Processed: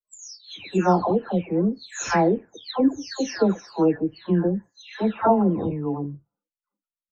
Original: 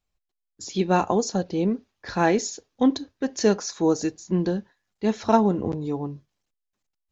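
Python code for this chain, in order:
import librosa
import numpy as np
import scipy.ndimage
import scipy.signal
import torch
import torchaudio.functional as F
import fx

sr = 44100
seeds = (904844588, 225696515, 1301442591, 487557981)

y = fx.spec_delay(x, sr, highs='early', ms=530)
y = fx.noise_reduce_blind(y, sr, reduce_db=29)
y = fx.env_lowpass_down(y, sr, base_hz=2500.0, full_db=-20.0)
y = y * 10.0 ** (2.5 / 20.0)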